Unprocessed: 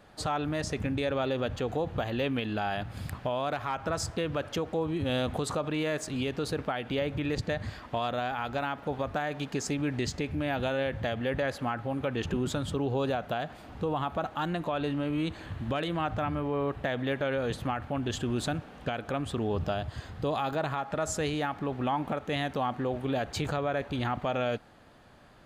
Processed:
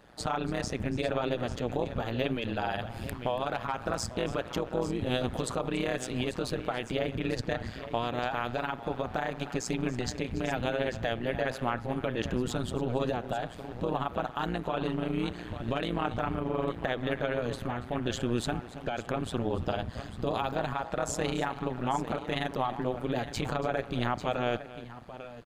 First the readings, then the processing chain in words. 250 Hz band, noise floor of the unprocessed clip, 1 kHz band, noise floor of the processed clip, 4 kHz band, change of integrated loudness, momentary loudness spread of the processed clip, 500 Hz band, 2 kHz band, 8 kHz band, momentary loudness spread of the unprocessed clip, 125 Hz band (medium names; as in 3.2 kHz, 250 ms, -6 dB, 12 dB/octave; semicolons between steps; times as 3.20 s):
-1.0 dB, -49 dBFS, -0.5 dB, -44 dBFS, -0.5 dB, -0.5 dB, 4 LU, -0.5 dB, -0.5 dB, -0.5 dB, 3 LU, -1.0 dB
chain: multi-tap echo 283/846 ms -17/-12.5 dB; AM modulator 120 Hz, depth 85%; trim +3 dB